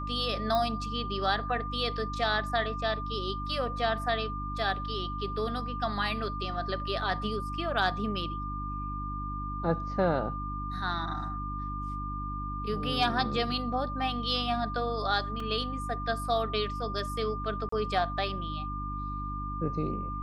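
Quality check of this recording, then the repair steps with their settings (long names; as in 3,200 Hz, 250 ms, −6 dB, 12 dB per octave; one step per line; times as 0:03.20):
mains hum 50 Hz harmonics 6 −37 dBFS
whistle 1,200 Hz −36 dBFS
0:00.55: click −18 dBFS
0:15.40: drop-out 2.7 ms
0:17.69–0:17.72: drop-out 34 ms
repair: click removal
hum removal 50 Hz, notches 6
notch filter 1,200 Hz, Q 30
repair the gap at 0:15.40, 2.7 ms
repair the gap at 0:17.69, 34 ms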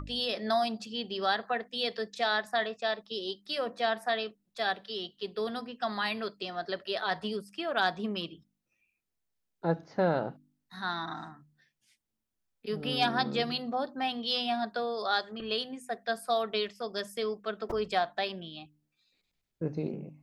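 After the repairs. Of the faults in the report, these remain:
none of them is left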